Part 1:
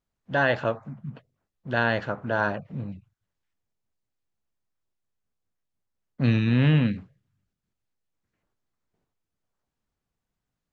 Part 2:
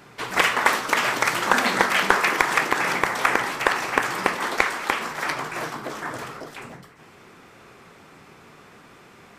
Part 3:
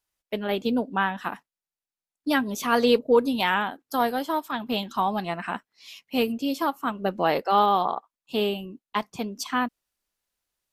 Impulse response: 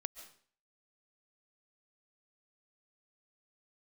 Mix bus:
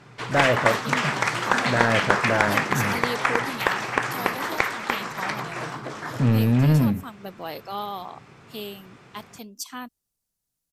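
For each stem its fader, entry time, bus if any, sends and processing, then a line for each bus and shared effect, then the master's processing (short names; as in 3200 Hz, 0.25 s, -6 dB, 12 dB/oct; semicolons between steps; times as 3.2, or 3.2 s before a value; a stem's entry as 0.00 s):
-1.5 dB, 0.00 s, no send, LPF 1200 Hz 6 dB/oct; sample leveller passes 2
-2.5 dB, 0.00 s, no send, LPF 8000 Hz 12 dB/oct; bell 120 Hz +10 dB 0.78 oct
-12.0 dB, 0.20 s, no send, tone controls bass +3 dB, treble +15 dB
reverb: off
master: dry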